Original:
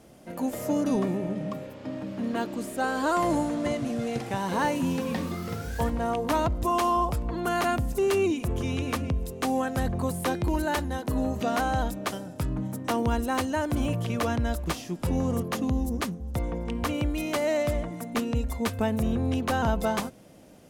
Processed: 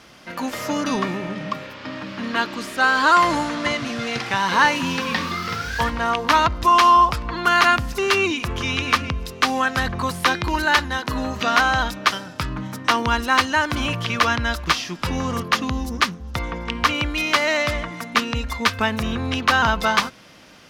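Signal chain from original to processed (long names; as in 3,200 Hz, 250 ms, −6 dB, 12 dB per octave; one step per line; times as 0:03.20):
flat-topped bell 2,400 Hz +14.5 dB 2.9 octaves
level +1 dB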